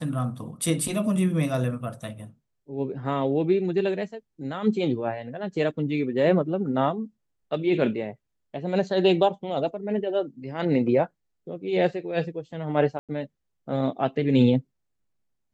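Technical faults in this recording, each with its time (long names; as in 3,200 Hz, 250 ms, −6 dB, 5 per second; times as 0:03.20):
0:12.99–0:13.09: drop-out 97 ms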